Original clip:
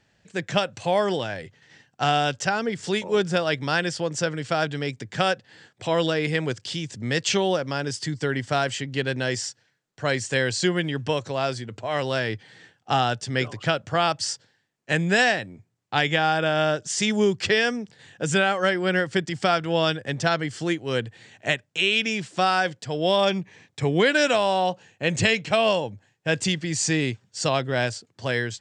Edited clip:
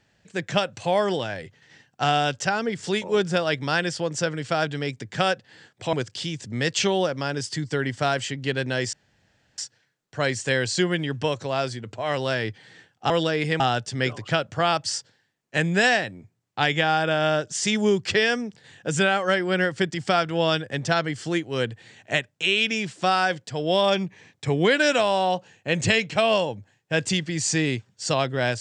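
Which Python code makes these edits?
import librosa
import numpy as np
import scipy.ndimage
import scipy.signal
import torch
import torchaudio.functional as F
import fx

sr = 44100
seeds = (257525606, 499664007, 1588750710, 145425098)

y = fx.edit(x, sr, fx.move(start_s=5.93, length_s=0.5, to_s=12.95),
    fx.insert_room_tone(at_s=9.43, length_s=0.65), tone=tone)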